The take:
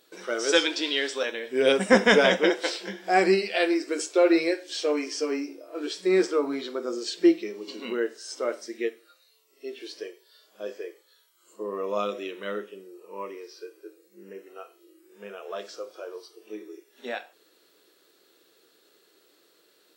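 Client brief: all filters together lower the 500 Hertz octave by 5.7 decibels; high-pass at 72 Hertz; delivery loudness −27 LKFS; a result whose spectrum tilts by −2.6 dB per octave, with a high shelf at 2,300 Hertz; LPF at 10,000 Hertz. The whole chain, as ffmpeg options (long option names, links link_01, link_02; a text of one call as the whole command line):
ffmpeg -i in.wav -af "highpass=72,lowpass=10000,equalizer=frequency=500:width_type=o:gain=-7,highshelf=frequency=2300:gain=-8,volume=3dB" out.wav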